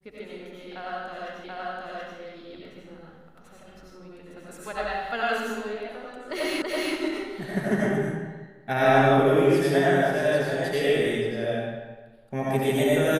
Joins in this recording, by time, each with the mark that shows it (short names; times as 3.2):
1.44 repeat of the last 0.73 s
6.62 repeat of the last 0.33 s